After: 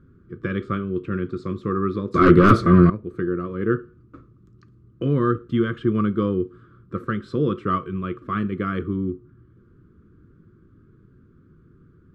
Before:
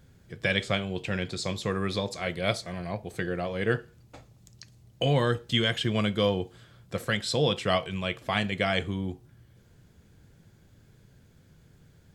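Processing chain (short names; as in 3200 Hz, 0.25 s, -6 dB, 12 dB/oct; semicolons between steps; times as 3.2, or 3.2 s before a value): 2.14–2.9 sine folder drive 16 dB, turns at -9.5 dBFS; EQ curve 140 Hz 0 dB, 360 Hz +9 dB, 810 Hz -27 dB, 1200 Hz +9 dB, 1900 Hz -13 dB, 7400 Hz -29 dB; gain +3 dB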